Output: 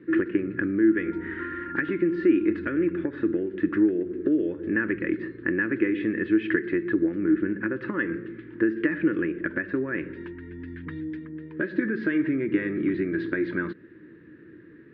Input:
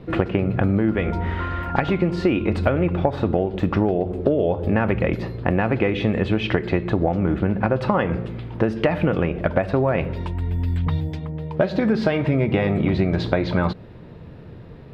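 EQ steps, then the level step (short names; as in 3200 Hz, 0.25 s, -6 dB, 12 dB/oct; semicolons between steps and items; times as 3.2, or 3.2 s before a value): double band-pass 740 Hz, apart 2.4 oct; air absorption 68 m; +5.5 dB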